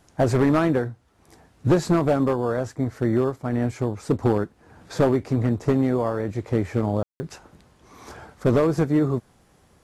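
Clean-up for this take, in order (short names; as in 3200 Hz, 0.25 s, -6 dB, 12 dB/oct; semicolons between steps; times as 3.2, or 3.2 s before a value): clip repair -12.5 dBFS; room tone fill 7.03–7.2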